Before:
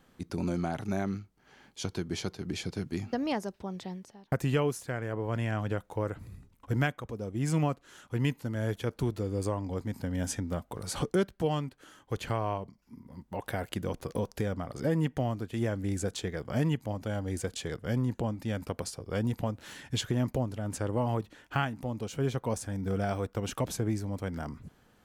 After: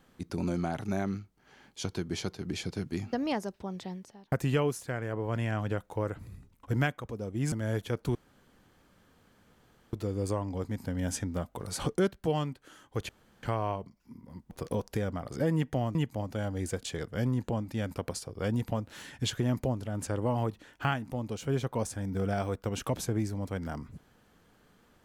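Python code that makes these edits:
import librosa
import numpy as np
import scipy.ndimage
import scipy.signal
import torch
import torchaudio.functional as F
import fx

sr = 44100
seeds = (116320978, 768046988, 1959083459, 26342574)

y = fx.edit(x, sr, fx.cut(start_s=7.52, length_s=0.94),
    fx.insert_room_tone(at_s=9.09, length_s=1.78),
    fx.insert_room_tone(at_s=12.25, length_s=0.34),
    fx.cut(start_s=13.33, length_s=0.62),
    fx.cut(start_s=15.39, length_s=1.27), tone=tone)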